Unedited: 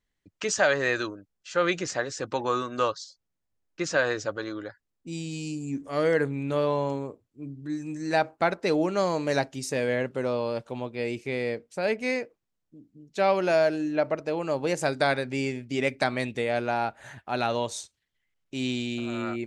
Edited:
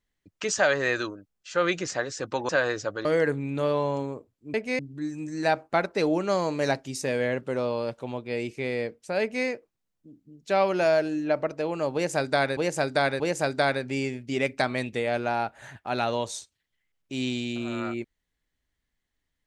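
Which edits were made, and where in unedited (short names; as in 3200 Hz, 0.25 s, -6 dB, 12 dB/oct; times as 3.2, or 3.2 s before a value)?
2.49–3.9 cut
4.46–5.98 cut
11.89–12.14 copy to 7.47
14.62–15.25 loop, 3 plays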